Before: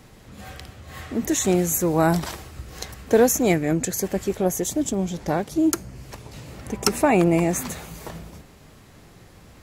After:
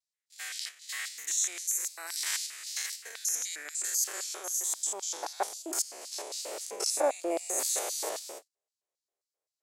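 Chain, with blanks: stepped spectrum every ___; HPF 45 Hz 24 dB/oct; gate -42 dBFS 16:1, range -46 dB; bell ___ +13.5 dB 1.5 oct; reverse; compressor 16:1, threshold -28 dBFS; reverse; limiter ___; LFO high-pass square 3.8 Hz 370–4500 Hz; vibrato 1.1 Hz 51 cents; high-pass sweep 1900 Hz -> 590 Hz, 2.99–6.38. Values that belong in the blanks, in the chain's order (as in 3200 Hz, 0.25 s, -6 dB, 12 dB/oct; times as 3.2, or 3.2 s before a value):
0.1 s, 8200 Hz, -19.5 dBFS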